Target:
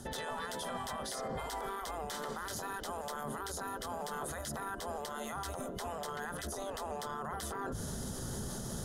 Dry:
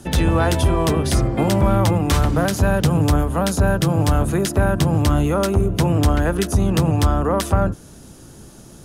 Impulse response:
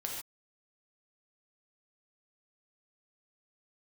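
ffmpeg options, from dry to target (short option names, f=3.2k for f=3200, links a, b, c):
-af "bandreject=f=50:t=h:w=6,bandreject=f=100:t=h:w=6,bandreject=f=150:t=h:w=6,afftfilt=real='re*lt(hypot(re,im),0.316)':imag='im*lt(hypot(re,im),0.316)':win_size=1024:overlap=0.75,superequalizer=6b=0.447:12b=0.316,areverse,acompressor=threshold=-38dB:ratio=8,areverse,alimiter=level_in=12dB:limit=-24dB:level=0:latency=1:release=40,volume=-12dB,volume=5.5dB"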